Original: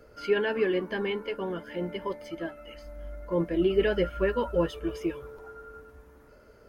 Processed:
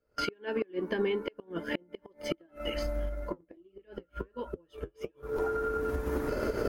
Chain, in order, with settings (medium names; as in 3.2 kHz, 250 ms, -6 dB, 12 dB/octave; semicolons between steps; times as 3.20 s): recorder AGC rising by 66 dB/s; gate with hold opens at -24 dBFS; dynamic bell 330 Hz, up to +7 dB, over -38 dBFS, Q 1.6; transient shaper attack +6 dB, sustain -2 dB; inverted gate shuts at -11 dBFS, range -31 dB; 3.09–5.36 s: flange 1.4 Hz, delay 4.9 ms, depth 6.3 ms, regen -54%; trim -7.5 dB